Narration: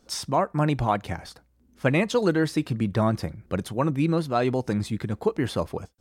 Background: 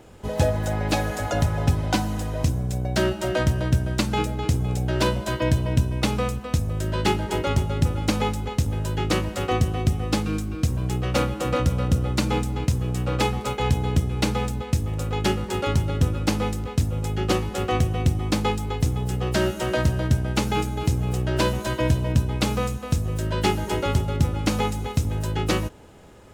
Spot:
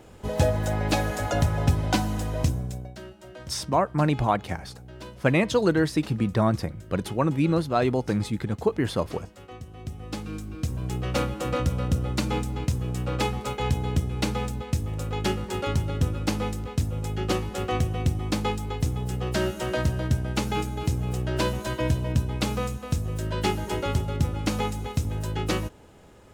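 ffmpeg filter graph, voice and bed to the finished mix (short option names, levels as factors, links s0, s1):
-filter_complex "[0:a]adelay=3400,volume=1.06[s0];[1:a]volume=5.96,afade=t=out:st=2.43:d=0.53:silence=0.112202,afade=t=in:st=9.66:d=1.42:silence=0.149624[s1];[s0][s1]amix=inputs=2:normalize=0"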